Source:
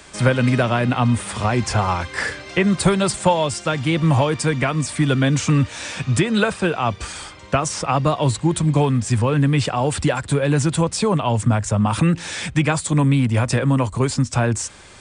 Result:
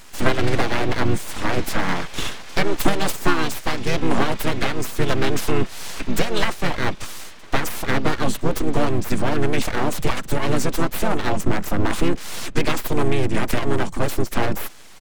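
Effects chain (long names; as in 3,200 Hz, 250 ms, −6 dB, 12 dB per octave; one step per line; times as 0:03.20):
full-wave rectification
pitch-shifted copies added −4 semitones −4 dB
level −1 dB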